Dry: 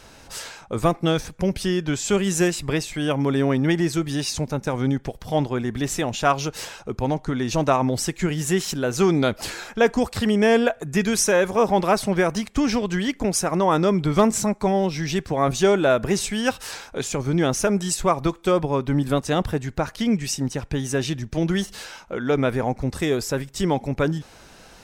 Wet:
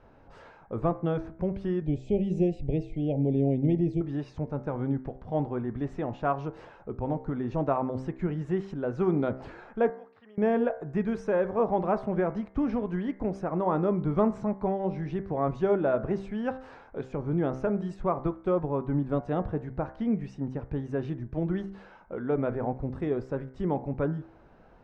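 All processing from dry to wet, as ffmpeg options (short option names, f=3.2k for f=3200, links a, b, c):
-filter_complex "[0:a]asettb=1/sr,asplit=3[a][b][c];[a]atrim=end=1.824[d];[b]atrim=start=1.82:end=4.01,asetpts=PTS-STARTPTS,afade=t=in:d=0.004:c=qsin,afade=t=out:st=2.186:d=0.004:c=qsin,asuperstop=centerf=1300:order=8:qfactor=0.87,lowshelf=f=110:g=11[e];[c]atrim=start=4.006[f];[d][e]acrossfade=d=0.004:c1=hsin:c2=qsin[g];[g][f]acrossfade=d=0.004:c1=qsin:c2=hsin,asettb=1/sr,asplit=3[h][i][j];[h]atrim=end=9.904[k];[i]atrim=start=9.9:end=10.38,asetpts=PTS-STARTPTS,afade=t=in:d=0.004:c=qsin,afade=t=out:st=0.476:d=0.004:c=qsin,lowpass=2.4k,aderivative[l];[j]atrim=start=10.376[m];[k][l]acrossfade=d=0.004:c1=hsin:c2=qsin[n];[n][m]acrossfade=d=0.004:c1=qsin:c2=hsin,lowpass=1.1k,bandreject=f=65.1:t=h:w=4,bandreject=f=130.2:t=h:w=4,bandreject=f=195.3:t=h:w=4,bandreject=f=260.4:t=h:w=4,bandreject=f=325.5:t=h:w=4,bandreject=f=390.6:t=h:w=4,bandreject=f=455.7:t=h:w=4,bandreject=f=520.8:t=h:w=4,bandreject=f=585.9:t=h:w=4,bandreject=f=651:t=h:w=4,bandreject=f=716.1:t=h:w=4,bandreject=f=781.2:t=h:w=4,bandreject=f=846.3:t=h:w=4,bandreject=f=911.4:t=h:w=4,bandreject=f=976.5:t=h:w=4,bandreject=f=1.0416k:t=h:w=4,bandreject=f=1.1067k:t=h:w=4,bandreject=f=1.1718k:t=h:w=4,bandreject=f=1.2369k:t=h:w=4,bandreject=f=1.302k:t=h:w=4,bandreject=f=1.3671k:t=h:w=4,bandreject=f=1.4322k:t=h:w=4,bandreject=f=1.4973k:t=h:w=4,bandreject=f=1.5624k:t=h:w=4,bandreject=f=1.6275k:t=h:w=4,bandreject=f=1.6926k:t=h:w=4,bandreject=f=1.7577k:t=h:w=4,bandreject=f=1.8228k:t=h:w=4,bandreject=f=1.8879k:t=h:w=4,bandreject=f=1.953k:t=h:w=4,bandreject=f=2.0181k:t=h:w=4,bandreject=f=2.0832k:t=h:w=4,bandreject=f=2.1483k:t=h:w=4,bandreject=f=2.2134k:t=h:w=4,volume=-6dB"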